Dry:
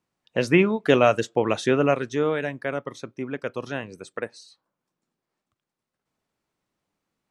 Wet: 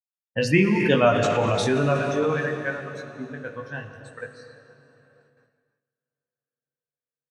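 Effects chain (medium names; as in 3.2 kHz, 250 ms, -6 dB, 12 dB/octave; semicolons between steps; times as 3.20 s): expander on every frequency bin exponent 2; tone controls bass +13 dB, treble -4 dB; doubling 20 ms -4.5 dB; on a send: echo that smears into a reverb 455 ms, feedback 51%, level -16 dB; on the sum: gate with hold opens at -55 dBFS; bass shelf 430 Hz -8.5 dB; hum notches 50/100/150/200/250/300/350/400/450 Hz; gated-style reverb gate 360 ms flat, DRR 6.5 dB; in parallel at -3 dB: compressor with a negative ratio -29 dBFS, ratio -0.5; on the sum: tape noise reduction on one side only decoder only; trim +1.5 dB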